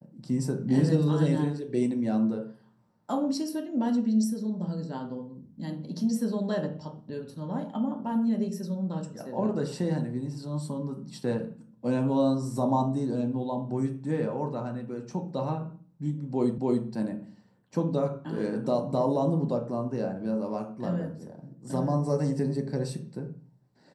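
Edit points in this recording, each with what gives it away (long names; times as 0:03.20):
0:16.58: the same again, the last 0.28 s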